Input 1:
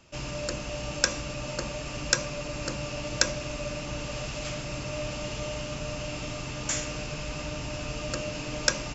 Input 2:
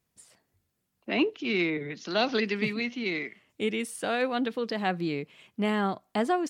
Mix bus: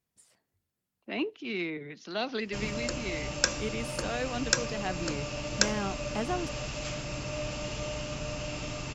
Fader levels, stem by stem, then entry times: -1.5, -6.5 dB; 2.40, 0.00 s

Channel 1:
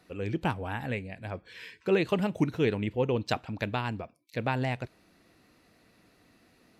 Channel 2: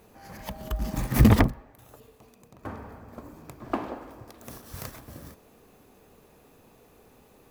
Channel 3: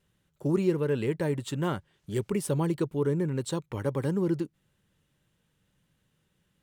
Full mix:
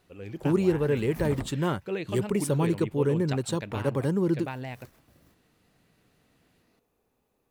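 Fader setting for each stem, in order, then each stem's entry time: -7.0, -18.0, +2.0 dB; 0.00, 0.00, 0.00 s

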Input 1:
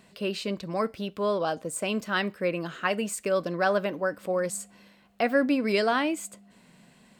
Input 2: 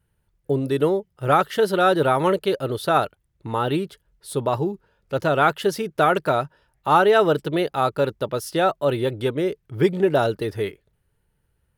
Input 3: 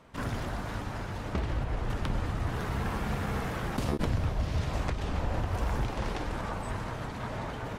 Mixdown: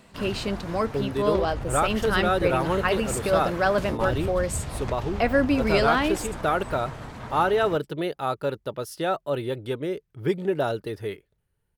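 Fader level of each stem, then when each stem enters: +2.0, -6.0, -1.5 dB; 0.00, 0.45, 0.00 s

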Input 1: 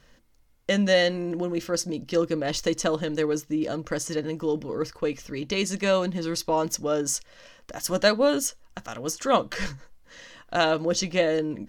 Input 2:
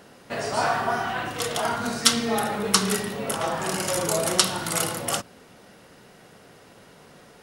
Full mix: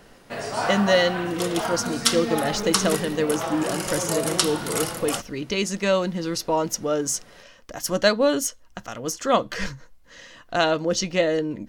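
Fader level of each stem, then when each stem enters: +1.5, -2.0 dB; 0.00, 0.00 s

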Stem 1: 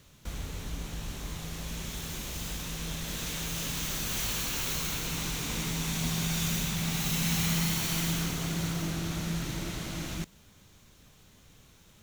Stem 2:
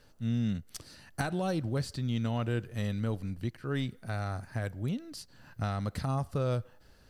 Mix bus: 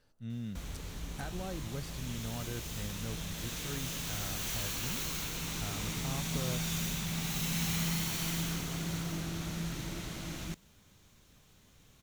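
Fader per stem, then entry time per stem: -4.5, -9.5 dB; 0.30, 0.00 s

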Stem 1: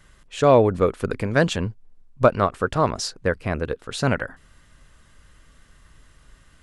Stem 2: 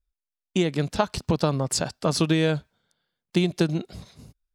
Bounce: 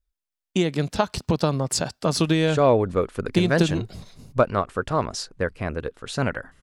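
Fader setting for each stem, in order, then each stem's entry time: -3.0, +1.0 dB; 2.15, 0.00 s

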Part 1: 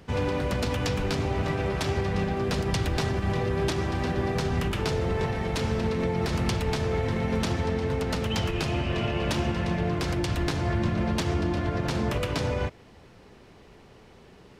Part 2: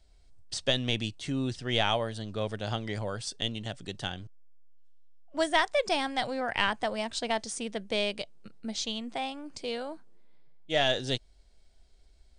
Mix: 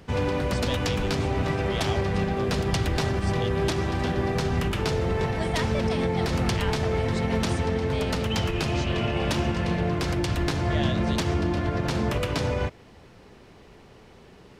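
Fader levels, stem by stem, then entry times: +1.5, -7.5 dB; 0.00, 0.00 s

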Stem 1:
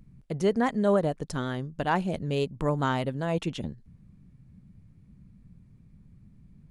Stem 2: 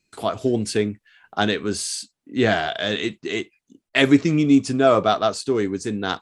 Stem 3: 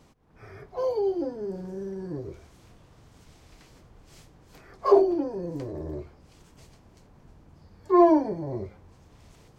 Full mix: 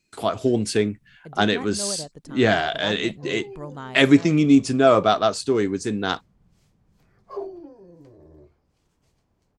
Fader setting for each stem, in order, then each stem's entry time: -9.5, +0.5, -14.5 dB; 0.95, 0.00, 2.45 s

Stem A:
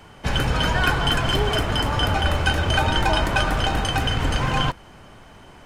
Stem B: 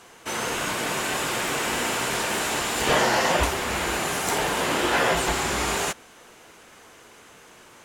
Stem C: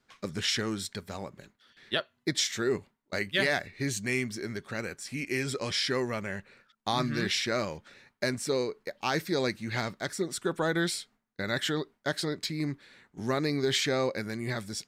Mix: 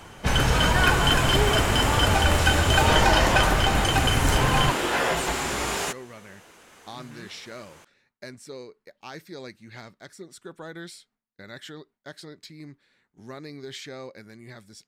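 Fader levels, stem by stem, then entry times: 0.0, -2.5, -11.0 dB; 0.00, 0.00, 0.00 s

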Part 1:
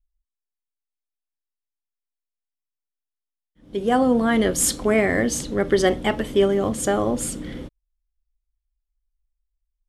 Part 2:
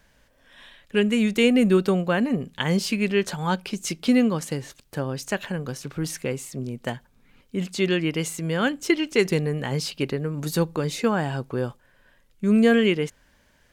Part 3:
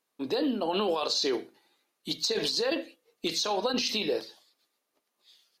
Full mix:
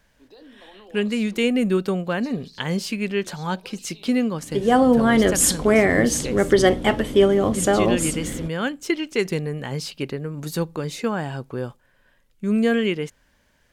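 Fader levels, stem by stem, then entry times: +2.5, -2.0, -19.5 dB; 0.80, 0.00, 0.00 s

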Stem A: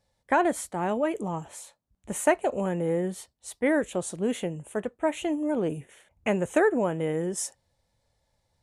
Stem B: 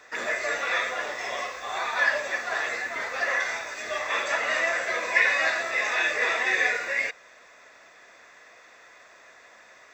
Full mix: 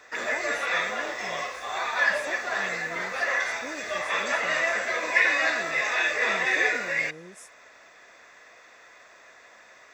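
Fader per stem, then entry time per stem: -16.5, 0.0 dB; 0.00, 0.00 s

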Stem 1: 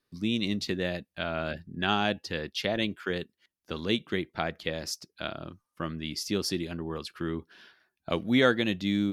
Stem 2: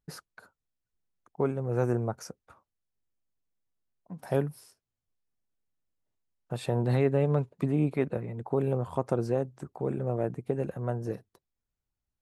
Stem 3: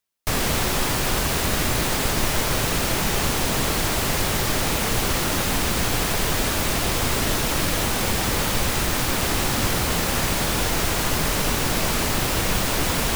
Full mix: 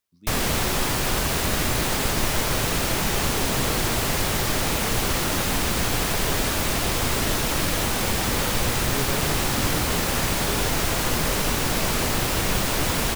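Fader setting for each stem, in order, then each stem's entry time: -17.5, -7.5, -1.0 dB; 0.00, 1.95, 0.00 s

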